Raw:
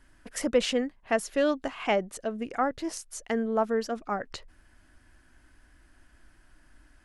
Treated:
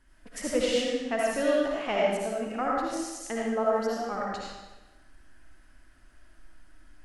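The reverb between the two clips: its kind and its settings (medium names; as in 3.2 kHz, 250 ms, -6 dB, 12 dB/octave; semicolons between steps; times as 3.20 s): algorithmic reverb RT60 1.1 s, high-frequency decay 0.95×, pre-delay 35 ms, DRR -5 dB; trim -5.5 dB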